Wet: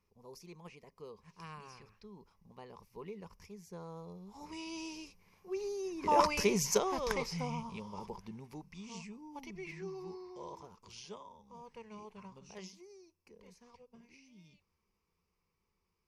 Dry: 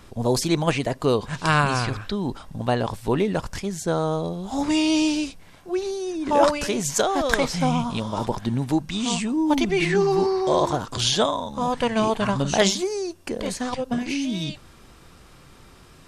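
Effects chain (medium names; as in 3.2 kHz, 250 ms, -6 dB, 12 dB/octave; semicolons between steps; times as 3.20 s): Doppler pass-by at 6.45 s, 13 m/s, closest 4.6 m; rippled EQ curve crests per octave 0.82, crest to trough 11 dB; trim -7.5 dB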